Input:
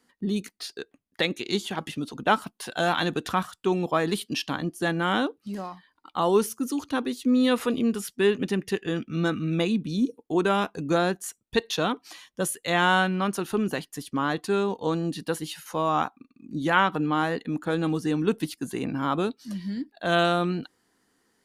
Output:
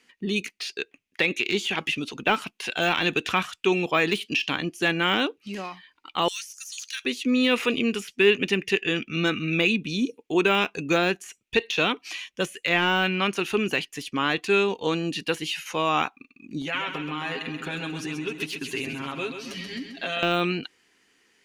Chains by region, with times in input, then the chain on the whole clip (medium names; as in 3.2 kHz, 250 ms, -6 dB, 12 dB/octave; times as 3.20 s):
6.28–7.05 s: Chebyshev high-pass 1.7 kHz, order 4 + resonant high shelf 4 kHz +12 dB, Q 1.5 + compression 12:1, threshold -27 dBFS
16.61–20.23 s: comb 7.4 ms, depth 91% + compression 16:1, threshold -29 dBFS + feedback delay 132 ms, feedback 52%, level -8 dB
whole clip: peaking EQ 2.6 kHz +8 dB 1.7 oct; de-esser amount 75%; fifteen-band graphic EQ 400 Hz +5 dB, 2.5 kHz +12 dB, 6.3 kHz +7 dB; trim -2.5 dB